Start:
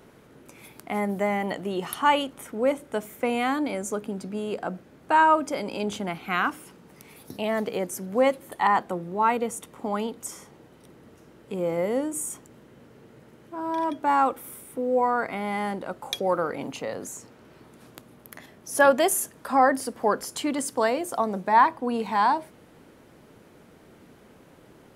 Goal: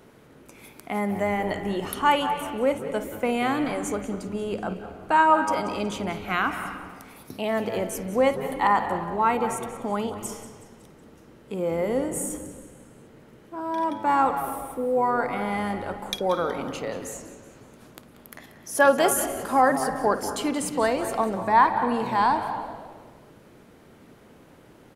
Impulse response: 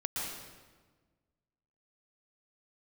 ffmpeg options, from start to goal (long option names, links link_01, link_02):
-filter_complex "[0:a]asplit=5[link_01][link_02][link_03][link_04][link_05];[link_02]adelay=185,afreqshift=-110,volume=-15dB[link_06];[link_03]adelay=370,afreqshift=-220,volume=-21.4dB[link_07];[link_04]adelay=555,afreqshift=-330,volume=-27.8dB[link_08];[link_05]adelay=740,afreqshift=-440,volume=-34.1dB[link_09];[link_01][link_06][link_07][link_08][link_09]amix=inputs=5:normalize=0,asplit=2[link_10][link_11];[1:a]atrim=start_sample=2205,lowpass=4500,adelay=54[link_12];[link_11][link_12]afir=irnorm=-1:irlink=0,volume=-12dB[link_13];[link_10][link_13]amix=inputs=2:normalize=0"